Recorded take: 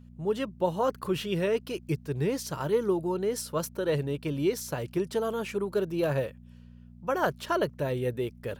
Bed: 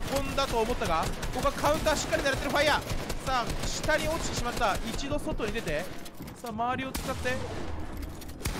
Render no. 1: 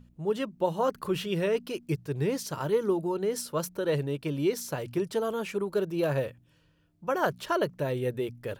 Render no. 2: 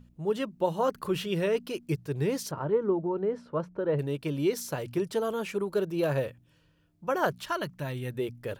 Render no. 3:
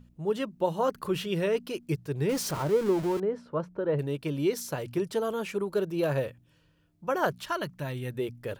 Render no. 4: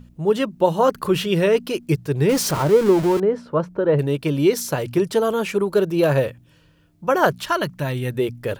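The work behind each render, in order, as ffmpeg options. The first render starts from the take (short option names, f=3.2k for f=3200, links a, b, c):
-af "bandreject=f=60:t=h:w=4,bandreject=f=120:t=h:w=4,bandreject=f=180:t=h:w=4,bandreject=f=240:t=h:w=4"
-filter_complex "[0:a]asettb=1/sr,asplit=3[a][b][c];[a]atrim=end=2.514[d];[b]atrim=start=2.51:end=3.99,asetpts=PTS-STARTPTS,afade=t=in:d=0.004:c=qsin,afade=t=out:st=1.476:d=0.004:c=qsin,lowpass=1.4k[e];[c]atrim=start=3.986[f];[d][e]acrossfade=d=0.004:c1=hsin:c2=qsin[g];[g][f]acrossfade=d=0.004:c1=qsin:c2=hsin,asettb=1/sr,asplit=3[h][i][j];[h]atrim=end=7.384[k];[i]atrim=start=7.38:end=8.17,asetpts=PTS-STARTPTS,afade=t=in:d=0.004:c=qsin,afade=t=out:st=0.786:d=0.004:c=qsin,equalizer=f=460:w=1.5:g=-12.5[l];[j]atrim=start=8.166[m];[k][l]acrossfade=d=0.004:c1=hsin:c2=qsin[n];[n][m]acrossfade=d=0.004:c1=qsin:c2=hsin"
-filter_complex "[0:a]asettb=1/sr,asplit=3[a][b][c];[a]atrim=end=2.294[d];[b]atrim=start=2.29:end=3.2,asetpts=PTS-STARTPTS,afade=t=in:d=0.004:c=qsin,afade=t=out:st=0.906:d=0.004:c=qsin,aeval=exprs='val(0)+0.5*0.0224*sgn(val(0))':c=same[e];[c]atrim=start=3.196[f];[d][e]acrossfade=d=0.004:c1=hsin:c2=qsin[g];[g][f]acrossfade=d=0.004:c1=qsin:c2=hsin"
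-af "volume=10dB"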